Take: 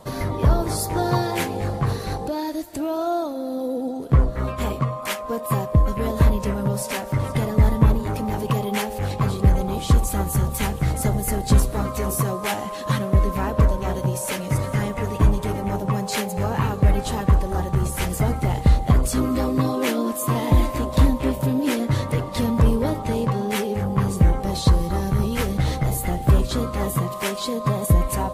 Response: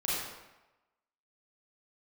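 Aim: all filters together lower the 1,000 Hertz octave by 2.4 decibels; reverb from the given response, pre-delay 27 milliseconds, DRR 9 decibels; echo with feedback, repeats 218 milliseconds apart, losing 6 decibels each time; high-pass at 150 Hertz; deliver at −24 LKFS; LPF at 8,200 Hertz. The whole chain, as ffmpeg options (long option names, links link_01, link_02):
-filter_complex "[0:a]highpass=150,lowpass=8200,equalizer=frequency=1000:width_type=o:gain=-3,aecho=1:1:218|436|654|872|1090|1308:0.501|0.251|0.125|0.0626|0.0313|0.0157,asplit=2[link_01][link_02];[1:a]atrim=start_sample=2205,adelay=27[link_03];[link_02][link_03]afir=irnorm=-1:irlink=0,volume=-16.5dB[link_04];[link_01][link_04]amix=inputs=2:normalize=0,volume=0.5dB"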